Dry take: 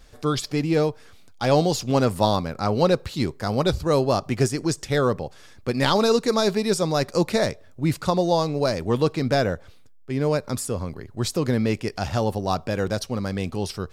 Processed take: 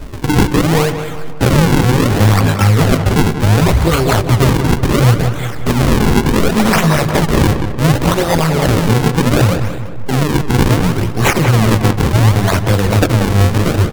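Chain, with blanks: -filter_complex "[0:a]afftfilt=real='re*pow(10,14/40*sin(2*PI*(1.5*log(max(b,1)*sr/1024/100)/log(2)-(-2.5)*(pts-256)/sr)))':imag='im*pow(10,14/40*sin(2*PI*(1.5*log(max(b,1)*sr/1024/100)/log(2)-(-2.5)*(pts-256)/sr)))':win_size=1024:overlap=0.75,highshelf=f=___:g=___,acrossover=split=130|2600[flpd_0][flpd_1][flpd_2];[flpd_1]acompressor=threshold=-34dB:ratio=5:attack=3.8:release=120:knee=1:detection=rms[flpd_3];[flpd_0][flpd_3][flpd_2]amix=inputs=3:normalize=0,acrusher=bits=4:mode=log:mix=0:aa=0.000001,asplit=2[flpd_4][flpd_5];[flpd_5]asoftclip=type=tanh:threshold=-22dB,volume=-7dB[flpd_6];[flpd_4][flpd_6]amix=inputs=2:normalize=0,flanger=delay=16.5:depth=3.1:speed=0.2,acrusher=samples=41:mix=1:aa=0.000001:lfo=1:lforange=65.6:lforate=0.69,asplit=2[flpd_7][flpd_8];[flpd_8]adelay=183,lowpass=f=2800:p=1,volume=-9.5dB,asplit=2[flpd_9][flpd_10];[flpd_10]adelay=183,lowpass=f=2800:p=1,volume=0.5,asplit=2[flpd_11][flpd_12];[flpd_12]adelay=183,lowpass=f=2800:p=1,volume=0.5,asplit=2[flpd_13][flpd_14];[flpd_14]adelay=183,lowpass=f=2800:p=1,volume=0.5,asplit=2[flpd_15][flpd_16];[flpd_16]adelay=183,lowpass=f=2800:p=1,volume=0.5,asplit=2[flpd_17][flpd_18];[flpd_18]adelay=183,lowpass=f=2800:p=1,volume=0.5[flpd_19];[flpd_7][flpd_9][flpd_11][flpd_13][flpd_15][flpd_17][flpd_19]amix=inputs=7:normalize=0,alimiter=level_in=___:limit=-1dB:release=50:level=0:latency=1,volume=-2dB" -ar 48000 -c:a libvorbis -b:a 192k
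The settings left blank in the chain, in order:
4900, 3.5, 21dB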